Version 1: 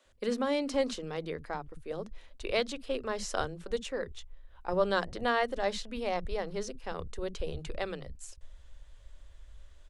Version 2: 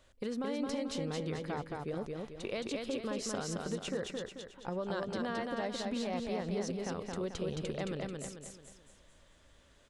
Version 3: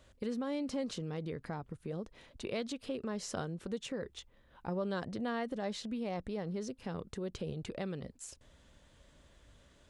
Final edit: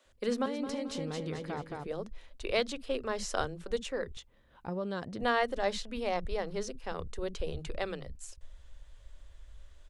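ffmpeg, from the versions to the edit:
ffmpeg -i take0.wav -i take1.wav -i take2.wav -filter_complex "[0:a]asplit=3[link_01][link_02][link_03];[link_01]atrim=end=0.462[link_04];[1:a]atrim=start=0.458:end=1.872[link_05];[link_02]atrim=start=1.868:end=4.172[link_06];[2:a]atrim=start=4.168:end=5.212[link_07];[link_03]atrim=start=5.208[link_08];[link_04][link_05]acrossfade=duration=0.004:curve1=hsin:curve2=hsin[link_09];[link_09][link_06]acrossfade=duration=0.004:curve1=hsin:curve2=hsin[link_10];[link_10][link_07]acrossfade=duration=0.004:curve1=hsin:curve2=hsin[link_11];[link_11][link_08]acrossfade=duration=0.004:curve1=hsin:curve2=hsin" out.wav

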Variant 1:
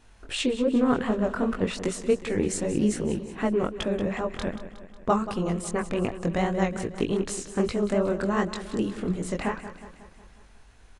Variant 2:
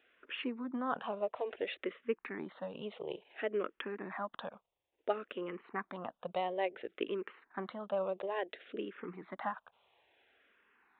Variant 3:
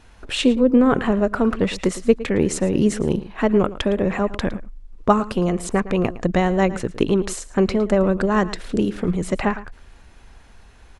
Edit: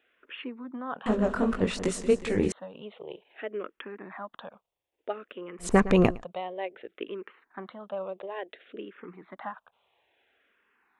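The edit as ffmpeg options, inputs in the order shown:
ffmpeg -i take0.wav -i take1.wav -i take2.wav -filter_complex "[1:a]asplit=3[link_01][link_02][link_03];[link_01]atrim=end=1.062[link_04];[0:a]atrim=start=1.058:end=2.522[link_05];[link_02]atrim=start=2.518:end=5.74[link_06];[2:a]atrim=start=5.58:end=6.25[link_07];[link_03]atrim=start=6.09[link_08];[link_04][link_05]acrossfade=duration=0.004:curve1=hsin:curve2=hsin[link_09];[link_09][link_06]acrossfade=duration=0.004:curve1=hsin:curve2=hsin[link_10];[link_10][link_07]acrossfade=duration=0.16:curve1=tri:curve2=tri[link_11];[link_11][link_08]acrossfade=duration=0.16:curve1=tri:curve2=tri" out.wav

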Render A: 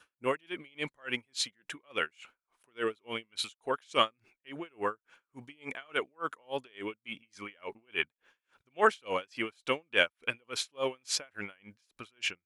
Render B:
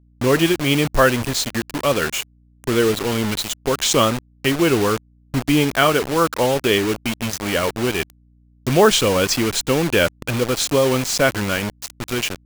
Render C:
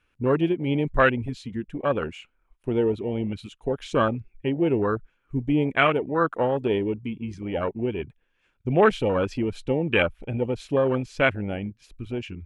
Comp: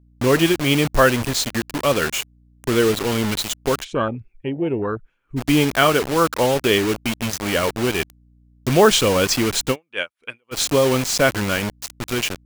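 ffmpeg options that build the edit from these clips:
ffmpeg -i take0.wav -i take1.wav -i take2.wav -filter_complex "[1:a]asplit=3[link_01][link_02][link_03];[link_01]atrim=end=3.85,asetpts=PTS-STARTPTS[link_04];[2:a]atrim=start=3.79:end=5.42,asetpts=PTS-STARTPTS[link_05];[link_02]atrim=start=5.36:end=9.76,asetpts=PTS-STARTPTS[link_06];[0:a]atrim=start=9.7:end=10.57,asetpts=PTS-STARTPTS[link_07];[link_03]atrim=start=10.51,asetpts=PTS-STARTPTS[link_08];[link_04][link_05]acrossfade=duration=0.06:curve1=tri:curve2=tri[link_09];[link_09][link_06]acrossfade=duration=0.06:curve1=tri:curve2=tri[link_10];[link_10][link_07]acrossfade=duration=0.06:curve1=tri:curve2=tri[link_11];[link_11][link_08]acrossfade=duration=0.06:curve1=tri:curve2=tri" out.wav

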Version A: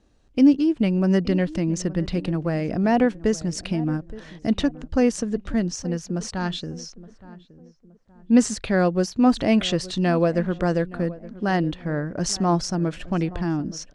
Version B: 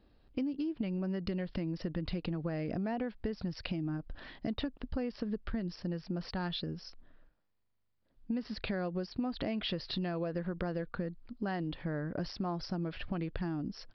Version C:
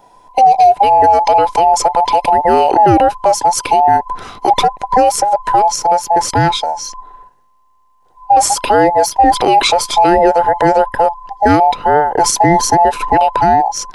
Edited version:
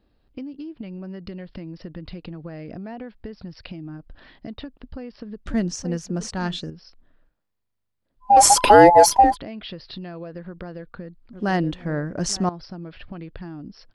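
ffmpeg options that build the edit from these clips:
ffmpeg -i take0.wav -i take1.wav -i take2.wav -filter_complex "[0:a]asplit=2[link_01][link_02];[1:a]asplit=4[link_03][link_04][link_05][link_06];[link_03]atrim=end=5.462[link_07];[link_01]atrim=start=5.458:end=6.702[link_08];[link_04]atrim=start=6.698:end=8.44[link_09];[2:a]atrim=start=8.2:end=9.37[link_10];[link_05]atrim=start=9.13:end=11.332[link_11];[link_02]atrim=start=11.328:end=12.492[link_12];[link_06]atrim=start=12.488[link_13];[link_07][link_08]acrossfade=duration=0.004:curve1=hsin:curve2=hsin[link_14];[link_14][link_09]acrossfade=duration=0.004:curve1=hsin:curve2=hsin[link_15];[link_15][link_10]acrossfade=duration=0.24:curve1=tri:curve2=tri[link_16];[link_16][link_11]acrossfade=duration=0.24:curve1=tri:curve2=tri[link_17];[link_17][link_12]acrossfade=duration=0.004:curve1=hsin:curve2=hsin[link_18];[link_18][link_13]acrossfade=duration=0.004:curve1=hsin:curve2=hsin" out.wav

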